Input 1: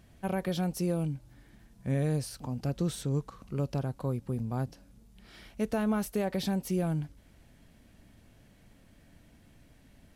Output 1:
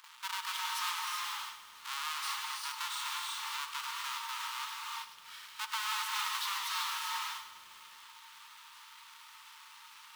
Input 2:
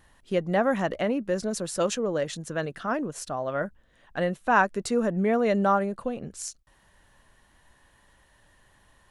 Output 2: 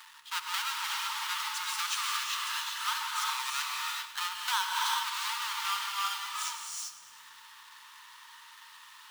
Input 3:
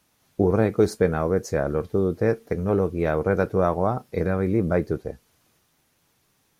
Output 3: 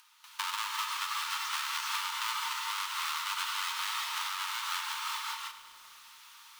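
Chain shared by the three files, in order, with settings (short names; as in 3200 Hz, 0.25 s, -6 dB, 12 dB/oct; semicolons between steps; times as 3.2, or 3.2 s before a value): half-waves squared off; non-linear reverb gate 0.42 s rising, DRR -1 dB; compressor 16:1, threshold -20 dBFS; rippled Chebyshev high-pass 880 Hz, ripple 6 dB; gate with hold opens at -55 dBFS; upward compressor, threshold -42 dBFS; lo-fi delay 0.102 s, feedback 80%, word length 9-bit, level -14 dB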